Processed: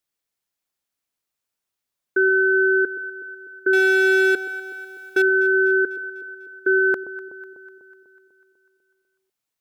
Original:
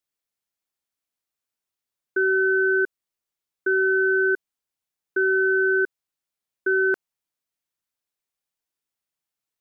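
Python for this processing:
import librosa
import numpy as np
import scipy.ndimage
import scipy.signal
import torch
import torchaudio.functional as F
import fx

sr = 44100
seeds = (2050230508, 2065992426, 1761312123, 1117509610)

y = fx.power_curve(x, sr, exponent=0.7, at=(3.73, 5.22))
y = fx.echo_alternate(y, sr, ms=124, hz=870.0, feedback_pct=75, wet_db=-13)
y = y * 10.0 ** (3.5 / 20.0)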